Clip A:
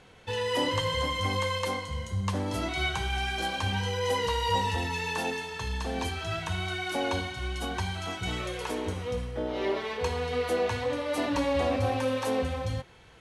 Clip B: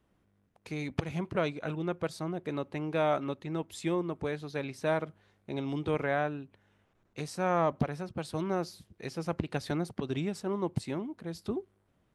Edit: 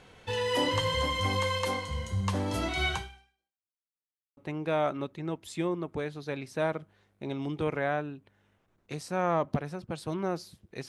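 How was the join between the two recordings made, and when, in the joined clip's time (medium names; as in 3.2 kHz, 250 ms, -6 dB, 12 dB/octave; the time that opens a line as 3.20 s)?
clip A
2.95–3.78 s: fade out exponential
3.78–4.37 s: mute
4.37 s: go over to clip B from 2.64 s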